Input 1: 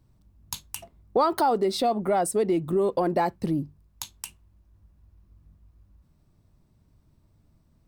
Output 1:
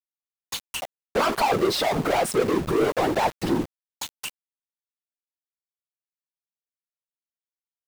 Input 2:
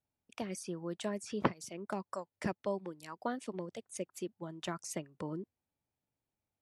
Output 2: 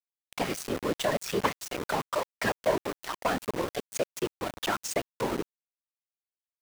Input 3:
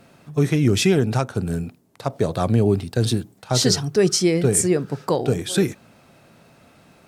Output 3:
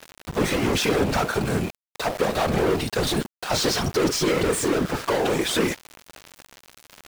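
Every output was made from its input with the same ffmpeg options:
-filter_complex "[0:a]asplit=2[a][b];[b]highpass=f=720:p=1,volume=35dB,asoftclip=type=tanh:threshold=-4dB[c];[a][c]amix=inputs=2:normalize=0,lowpass=f=3.8k:p=1,volume=-6dB,afftfilt=real='hypot(re,im)*cos(2*PI*random(0))':imag='hypot(re,im)*sin(2*PI*random(1))':win_size=512:overlap=0.75,aeval=exprs='val(0)*gte(abs(val(0)),0.0473)':c=same,volume=-4.5dB"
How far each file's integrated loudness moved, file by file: +1.5, +9.0, -2.5 LU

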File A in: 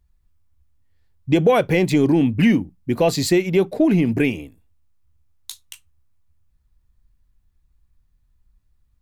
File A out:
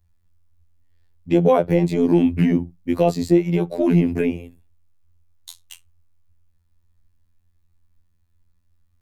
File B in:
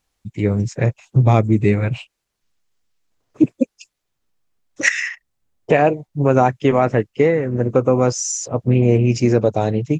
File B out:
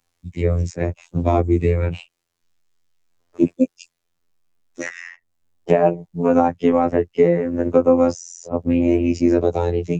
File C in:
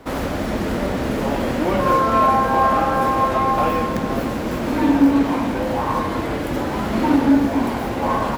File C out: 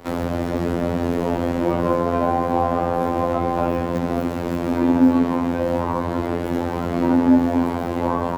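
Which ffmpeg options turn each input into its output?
-filter_complex "[0:a]afftfilt=real='hypot(re,im)*cos(PI*b)':imag='0':win_size=2048:overlap=0.75,acrossover=split=150|1100[a][b][c];[c]acompressor=threshold=-38dB:ratio=6[d];[a][b][d]amix=inputs=3:normalize=0,volume=3.5dB"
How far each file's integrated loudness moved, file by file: -0.5, -1.5, -1.5 LU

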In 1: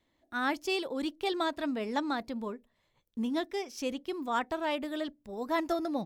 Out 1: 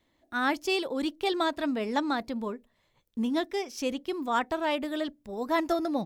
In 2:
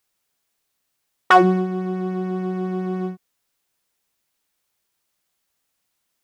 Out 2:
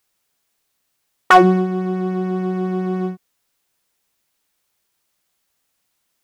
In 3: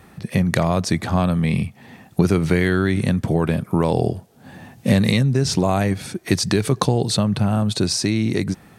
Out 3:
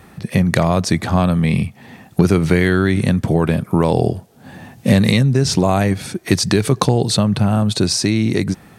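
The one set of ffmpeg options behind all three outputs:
-af "asoftclip=type=hard:threshold=-4.5dB,volume=3.5dB"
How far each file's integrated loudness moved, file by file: +3.5, +3.0, +3.5 LU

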